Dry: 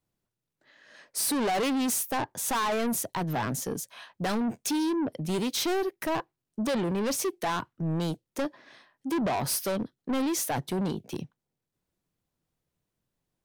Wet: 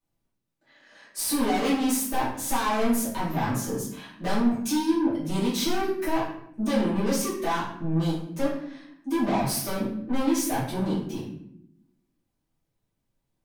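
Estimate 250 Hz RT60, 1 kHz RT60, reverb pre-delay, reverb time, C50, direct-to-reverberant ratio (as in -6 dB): 1.2 s, 0.60 s, 3 ms, 0.70 s, 4.0 dB, -10.5 dB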